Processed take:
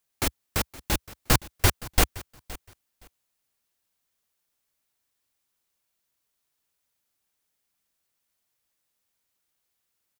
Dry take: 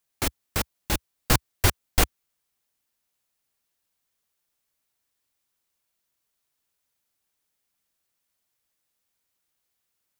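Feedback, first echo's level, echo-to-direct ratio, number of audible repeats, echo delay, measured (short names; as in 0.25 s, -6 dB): 18%, -19.0 dB, -19.0 dB, 2, 0.518 s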